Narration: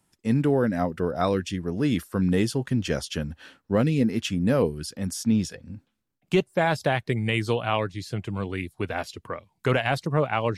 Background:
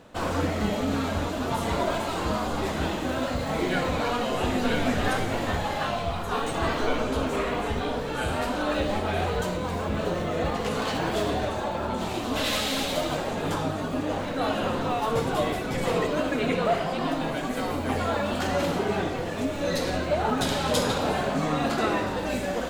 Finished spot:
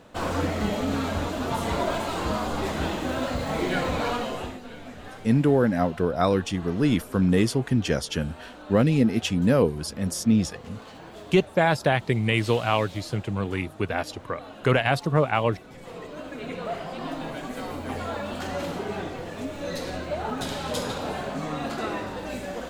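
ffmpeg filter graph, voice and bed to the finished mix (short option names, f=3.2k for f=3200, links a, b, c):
-filter_complex "[0:a]adelay=5000,volume=2dB[a];[1:a]volume=11.5dB,afade=t=out:st=4.1:d=0.5:silence=0.149624,afade=t=in:st=15.84:d=1.36:silence=0.266073[b];[a][b]amix=inputs=2:normalize=0"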